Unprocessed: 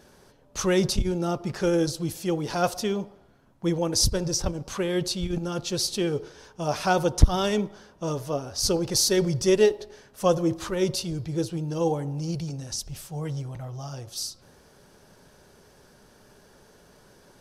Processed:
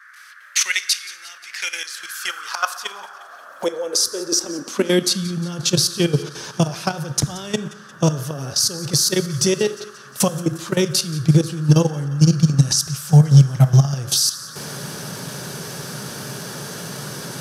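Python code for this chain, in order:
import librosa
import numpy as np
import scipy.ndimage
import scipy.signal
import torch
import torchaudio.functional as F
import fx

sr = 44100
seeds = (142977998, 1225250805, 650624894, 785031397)

p1 = fx.recorder_agc(x, sr, target_db=-10.0, rise_db_per_s=28.0, max_gain_db=30)
p2 = fx.highpass(p1, sr, hz=44.0, slope=6)
p3 = fx.high_shelf(p2, sr, hz=2200.0, db=10.0)
p4 = fx.level_steps(p3, sr, step_db=16)
p5 = fx.dmg_noise_band(p4, sr, seeds[0], low_hz=1100.0, high_hz=1700.0, level_db=-44.0)
p6 = fx.filter_sweep_highpass(p5, sr, from_hz=2100.0, to_hz=140.0, start_s=1.78, end_s=5.59, q=4.2)
p7 = p6 + fx.echo_wet_highpass(p6, sr, ms=177, feedback_pct=58, hz=1700.0, wet_db=-18.0, dry=0)
p8 = fx.rev_schroeder(p7, sr, rt60_s=0.89, comb_ms=26, drr_db=15.5)
y = F.gain(torch.from_numpy(p8), -1.5).numpy()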